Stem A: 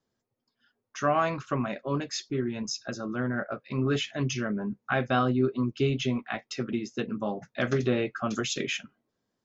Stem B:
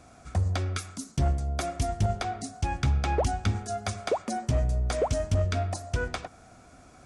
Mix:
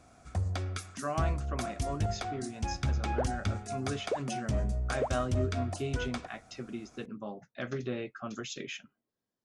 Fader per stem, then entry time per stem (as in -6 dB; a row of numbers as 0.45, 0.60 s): -9.5, -5.5 dB; 0.00, 0.00 s